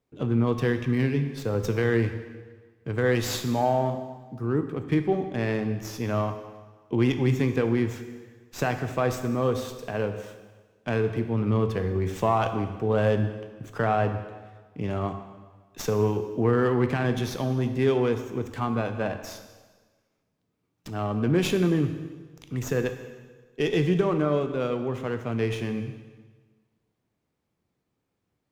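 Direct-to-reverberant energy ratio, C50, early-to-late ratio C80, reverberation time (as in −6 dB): 7.5 dB, 9.0 dB, 10.5 dB, 1.4 s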